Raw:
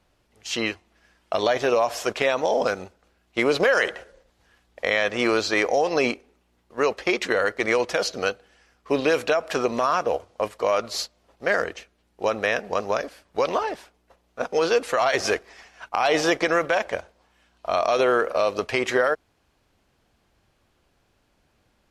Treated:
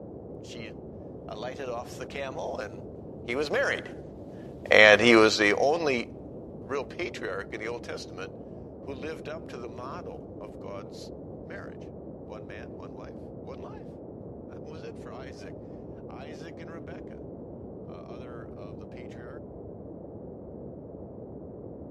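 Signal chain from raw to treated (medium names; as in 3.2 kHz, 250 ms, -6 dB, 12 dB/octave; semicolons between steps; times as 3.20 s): Doppler pass-by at 4.89 s, 9 m/s, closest 2.3 m; band noise 59–540 Hz -49 dBFS; trim +7 dB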